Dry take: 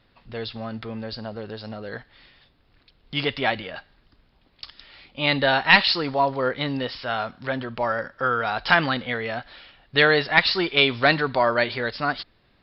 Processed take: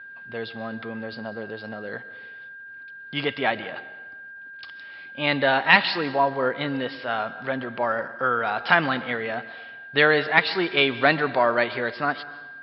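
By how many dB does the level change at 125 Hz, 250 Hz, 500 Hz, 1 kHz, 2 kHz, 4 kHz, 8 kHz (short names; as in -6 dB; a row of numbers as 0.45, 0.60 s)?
-3.5 dB, -0.5 dB, 0.0 dB, 0.0 dB, 0.0 dB, -4.0 dB, n/a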